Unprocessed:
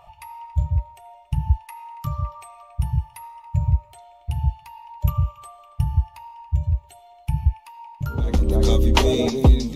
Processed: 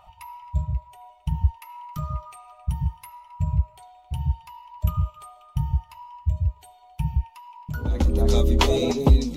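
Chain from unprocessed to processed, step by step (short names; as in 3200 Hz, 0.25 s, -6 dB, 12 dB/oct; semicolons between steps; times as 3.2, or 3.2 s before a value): speed mistake 24 fps film run at 25 fps; flange 0.63 Hz, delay 3.4 ms, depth 2.4 ms, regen -57%; gain +2 dB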